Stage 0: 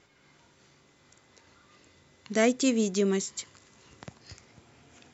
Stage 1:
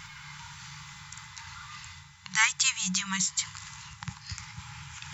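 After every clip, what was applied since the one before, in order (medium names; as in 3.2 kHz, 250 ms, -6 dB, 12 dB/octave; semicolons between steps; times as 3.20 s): FFT band-reject 190–810 Hz; reverse; upward compressor, threshold -42 dBFS; reverse; trim +8 dB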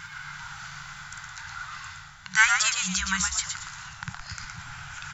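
peaking EQ 1.5 kHz +14.5 dB 0.27 oct; on a send: frequency-shifting echo 116 ms, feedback 30%, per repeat -120 Hz, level -5 dB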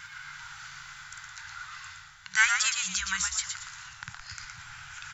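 FFT filter 110 Hz 0 dB, 160 Hz -4 dB, 250 Hz -9 dB, 1.8 kHz +6 dB; trim -8.5 dB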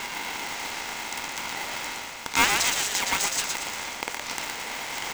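spectral levelling over time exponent 0.6; polarity switched at an audio rate 600 Hz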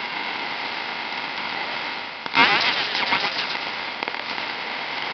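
high-pass 130 Hz 12 dB/octave; resampled via 11.025 kHz; trim +5.5 dB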